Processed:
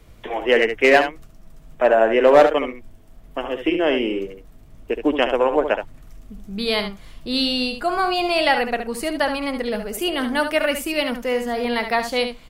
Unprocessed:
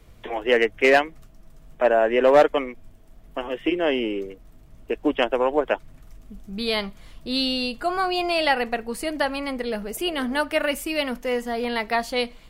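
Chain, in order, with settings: echo 71 ms -8.5 dB; gain +2.5 dB

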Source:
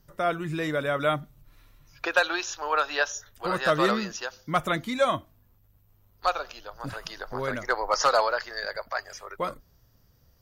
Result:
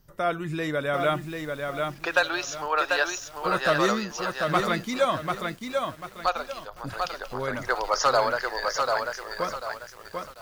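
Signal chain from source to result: lo-fi delay 0.742 s, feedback 35%, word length 8-bit, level -4 dB

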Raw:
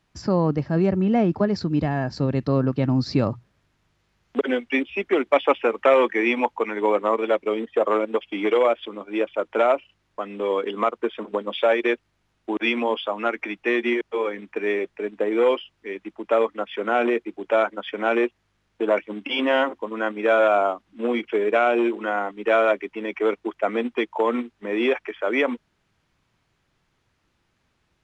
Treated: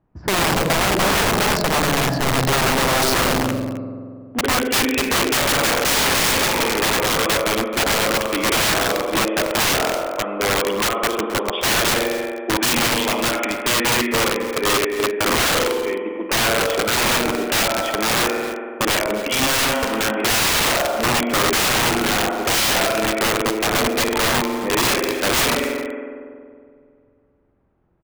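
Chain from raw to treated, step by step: spring tank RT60 2.4 s, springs 46 ms, chirp 30 ms, DRR 3.5 dB; low-pass opened by the level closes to 800 Hz, open at -18 dBFS; wrapped overs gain 18 dB; on a send: echo 0.265 s -15.5 dB; on the sum: gain +5 dB

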